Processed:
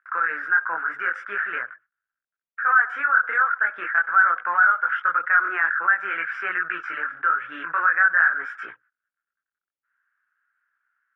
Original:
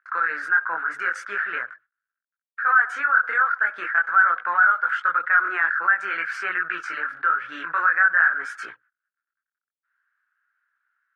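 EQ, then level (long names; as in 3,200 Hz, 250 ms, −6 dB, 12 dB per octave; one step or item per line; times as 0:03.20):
Savitzky-Golay smoothing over 25 samples
0.0 dB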